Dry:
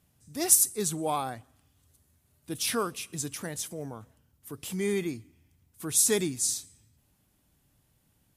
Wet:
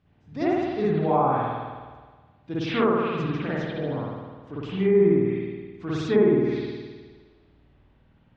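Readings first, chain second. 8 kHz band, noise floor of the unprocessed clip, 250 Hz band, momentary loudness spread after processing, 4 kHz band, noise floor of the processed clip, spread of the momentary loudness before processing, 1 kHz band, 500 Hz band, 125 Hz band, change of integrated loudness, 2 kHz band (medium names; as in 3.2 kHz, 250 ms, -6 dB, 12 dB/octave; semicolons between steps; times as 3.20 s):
under -30 dB, -70 dBFS, +10.5 dB, 18 LU, -4.0 dB, -60 dBFS, 21 LU, +9.5 dB, +11.5 dB, +11.0 dB, +3.0 dB, +5.5 dB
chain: Gaussian low-pass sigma 2.4 samples; spring tank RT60 1.5 s, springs 52 ms, chirp 30 ms, DRR -8.5 dB; low-pass that closes with the level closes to 1.2 kHz, closed at -17.5 dBFS; trim +1.5 dB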